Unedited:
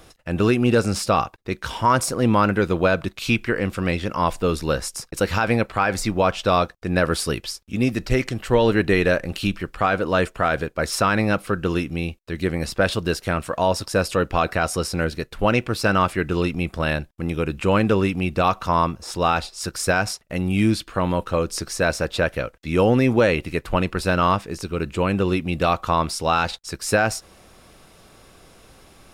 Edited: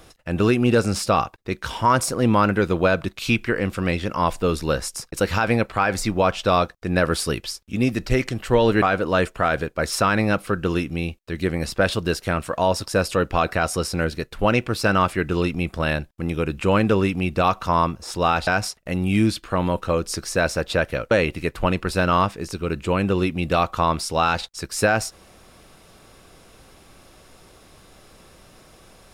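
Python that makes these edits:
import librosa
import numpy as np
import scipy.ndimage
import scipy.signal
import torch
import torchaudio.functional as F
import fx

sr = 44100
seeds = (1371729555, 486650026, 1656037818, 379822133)

y = fx.edit(x, sr, fx.cut(start_s=8.82, length_s=1.0),
    fx.cut(start_s=19.47, length_s=0.44),
    fx.cut(start_s=22.55, length_s=0.66), tone=tone)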